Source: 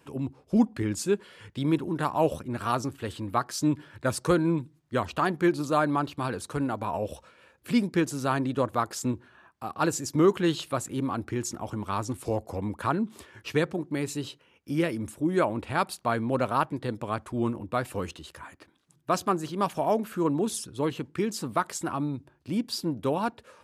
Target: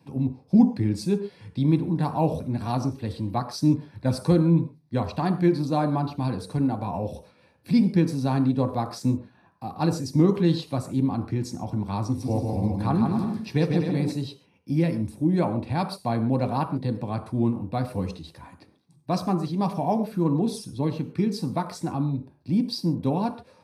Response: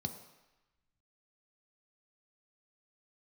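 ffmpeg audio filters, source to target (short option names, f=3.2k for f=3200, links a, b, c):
-filter_complex "[0:a]asettb=1/sr,asplit=3[a][b][c];[a]atrim=end=12.024[d];[b]atrim=start=12.02:end=14.12,asetpts=PTS-STARTPTS,afade=t=in:d=0.004:c=qsin,afade=t=out:st=2.096:d=0.004:c=qsin,aecho=1:1:150|255|328.5|380|416:0.631|0.398|0.251|0.158|0.1,atrim=end_sample=92610[e];[c]atrim=start=14.116[f];[d][e]acrossfade=d=0.004:c1=hsin:c2=qsin[g];[g][f]acrossfade=d=0.004:c1=qsin:c2=hsin[h];[1:a]atrim=start_sample=2205,atrim=end_sample=6615[i];[h][i]afir=irnorm=-1:irlink=0,volume=-3dB"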